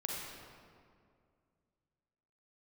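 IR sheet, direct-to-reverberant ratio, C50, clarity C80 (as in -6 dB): -2.5 dB, -1.5 dB, 0.5 dB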